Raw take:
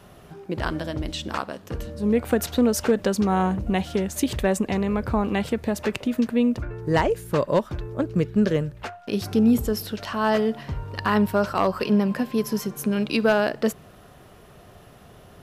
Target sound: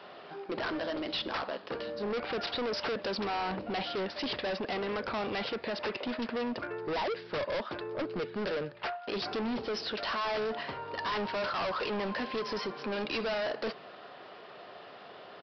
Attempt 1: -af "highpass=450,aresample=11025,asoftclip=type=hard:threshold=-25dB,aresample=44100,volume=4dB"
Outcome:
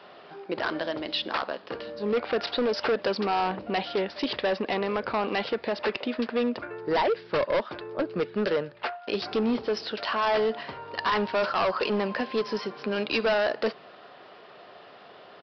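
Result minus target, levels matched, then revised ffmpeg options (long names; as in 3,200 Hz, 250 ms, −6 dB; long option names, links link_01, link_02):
hard clipping: distortion −5 dB
-af "highpass=450,aresample=11025,asoftclip=type=hard:threshold=-35dB,aresample=44100,volume=4dB"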